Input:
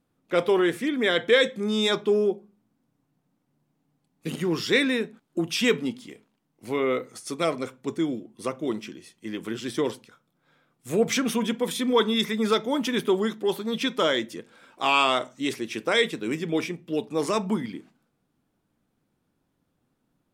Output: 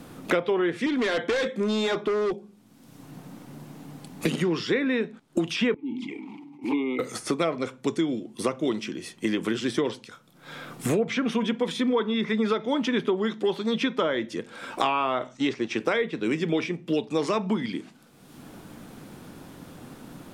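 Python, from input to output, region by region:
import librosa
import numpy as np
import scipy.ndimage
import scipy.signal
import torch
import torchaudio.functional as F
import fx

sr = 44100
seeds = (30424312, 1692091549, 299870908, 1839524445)

y = fx.chain(x, sr, fx.highpass(hz=180.0, slope=12),
    fx.clip_hard(threshold_db=-25.0), at=(0.86, 2.33))
y = fx.chain(y, sr, fx.vowel_filter(vowel='u'),
    fx.env_flanger(rest_ms=8.4, full_db=-33.5),
    fx.sustainer(db_per_s=59.0), at=(5.74, 6.99))
y = fx.chain(y, sr, fx.law_mismatch(coded='A'),
    fx.lowpass(hz=7600.0, slope=24), at=(15.37, 15.8))
y = fx.env_lowpass_down(y, sr, base_hz=1700.0, full_db=-17.5)
y = fx.band_squash(y, sr, depth_pct=100)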